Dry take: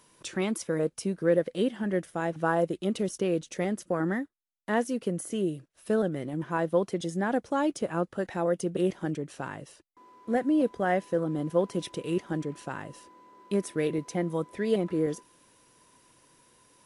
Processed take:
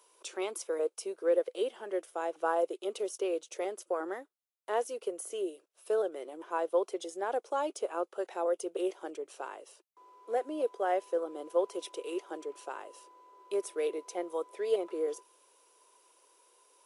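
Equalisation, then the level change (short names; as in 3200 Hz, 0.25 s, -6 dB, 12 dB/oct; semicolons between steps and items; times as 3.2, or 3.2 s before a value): Chebyshev high-pass 390 Hz, order 4; bell 1800 Hz -10 dB 0.48 oct; bell 4300 Hz -2.5 dB; -1.5 dB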